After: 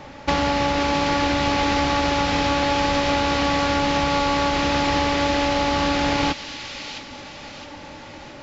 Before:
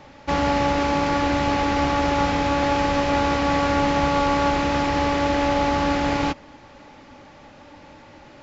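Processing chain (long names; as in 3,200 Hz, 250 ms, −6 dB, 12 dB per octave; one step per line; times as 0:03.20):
downward compressor, threshold −24 dBFS, peak gain reduction 8.5 dB
delay with a high-pass on its return 662 ms, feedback 54%, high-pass 2,600 Hz, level −5.5 dB
dynamic equaliser 4,000 Hz, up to +6 dB, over −51 dBFS, Q 0.82
level +6 dB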